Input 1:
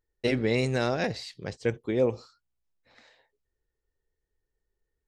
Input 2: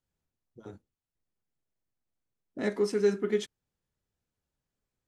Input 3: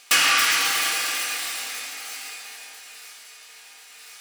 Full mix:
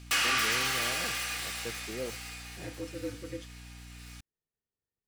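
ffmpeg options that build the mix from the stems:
-filter_complex "[0:a]highpass=130,volume=-13dB[a];[1:a]aeval=exprs='val(0)*sin(2*PI*90*n/s)':c=same,volume=-9.5dB[b];[2:a]aeval=exprs='val(0)+0.00891*(sin(2*PI*60*n/s)+sin(2*PI*2*60*n/s)/2+sin(2*PI*3*60*n/s)/3+sin(2*PI*4*60*n/s)/4+sin(2*PI*5*60*n/s)/5)':c=same,volume=-6dB[c];[a][b][c]amix=inputs=3:normalize=0,highshelf=f=5.6k:g=-4,asoftclip=type=tanh:threshold=-20.5dB"

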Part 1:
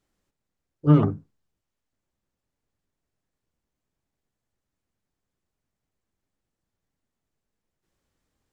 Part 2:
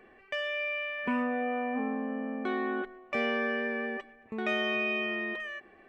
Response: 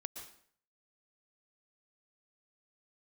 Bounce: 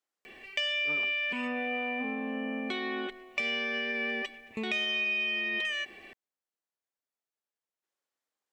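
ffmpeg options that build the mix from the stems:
-filter_complex "[0:a]highpass=550,volume=-9dB[a];[1:a]highshelf=f=4.7k:g=-7,alimiter=level_in=5dB:limit=-24dB:level=0:latency=1:release=432,volume=-5dB,aexciter=amount=7.2:drive=6.5:freq=2.2k,adelay=250,volume=3dB[b];[a][b]amix=inputs=2:normalize=0,acompressor=threshold=-28dB:ratio=6"

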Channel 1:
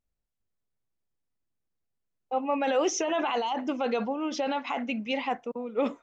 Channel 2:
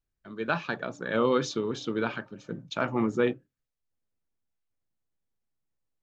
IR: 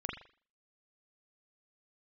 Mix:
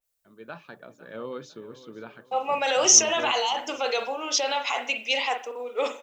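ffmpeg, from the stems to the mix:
-filter_complex "[0:a]crystalizer=i=4.5:c=0,highpass=f=400:w=0.5412,highpass=f=400:w=1.3066,adynamicequalizer=threshold=0.0141:dfrequency=3500:dqfactor=0.7:tfrequency=3500:tqfactor=0.7:attack=5:release=100:ratio=0.375:range=3:mode=boostabove:tftype=highshelf,volume=-3dB,asplit=2[a][b];[b]volume=-3.5dB[c];[1:a]equalizer=f=570:t=o:w=0.77:g=4,volume=-13.5dB,asplit=2[d][e];[e]volume=-16.5dB[f];[2:a]atrim=start_sample=2205[g];[c][g]afir=irnorm=-1:irlink=0[h];[f]aecho=0:1:502|1004|1506|2008|2510|3012:1|0.41|0.168|0.0689|0.0283|0.0116[i];[a][d][h][i]amix=inputs=4:normalize=0"

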